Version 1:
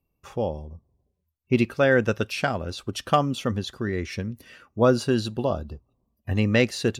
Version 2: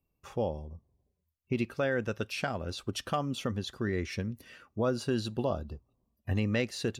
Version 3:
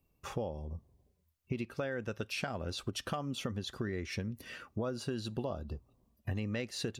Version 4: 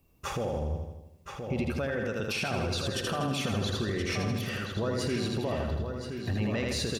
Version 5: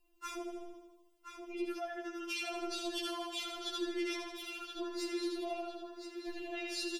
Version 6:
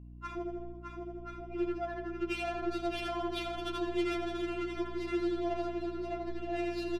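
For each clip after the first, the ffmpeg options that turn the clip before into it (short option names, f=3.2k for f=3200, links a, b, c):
-af "alimiter=limit=-15.5dB:level=0:latency=1:release=281,volume=-4dB"
-af "acompressor=threshold=-40dB:ratio=5,volume=5.5dB"
-filter_complex "[0:a]asplit=2[a][b];[b]aecho=0:1:80|160|240|320|400|480|560|640:0.531|0.303|0.172|0.0983|0.056|0.0319|0.0182|0.0104[c];[a][c]amix=inputs=2:normalize=0,alimiter=level_in=7.5dB:limit=-24dB:level=0:latency=1:release=14,volume=-7.5dB,asplit=2[d][e];[e]adelay=1024,lowpass=f=4.6k:p=1,volume=-6.5dB,asplit=2[f][g];[g]adelay=1024,lowpass=f=4.6k:p=1,volume=0.31,asplit=2[h][i];[i]adelay=1024,lowpass=f=4.6k:p=1,volume=0.31,asplit=2[j][k];[k]adelay=1024,lowpass=f=4.6k:p=1,volume=0.31[l];[f][h][j][l]amix=inputs=4:normalize=0[m];[d][m]amix=inputs=2:normalize=0,volume=8.5dB"
-af "afftfilt=real='re*4*eq(mod(b,16),0)':imag='im*4*eq(mod(b,16),0)':win_size=2048:overlap=0.75,volume=-3.5dB"
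-af "aecho=1:1:610|1037|1336|1545|1692:0.631|0.398|0.251|0.158|0.1,adynamicsmooth=sensitivity=4.5:basefreq=1.3k,aeval=exprs='val(0)+0.00251*(sin(2*PI*60*n/s)+sin(2*PI*2*60*n/s)/2+sin(2*PI*3*60*n/s)/3+sin(2*PI*4*60*n/s)/4+sin(2*PI*5*60*n/s)/5)':c=same,volume=4.5dB"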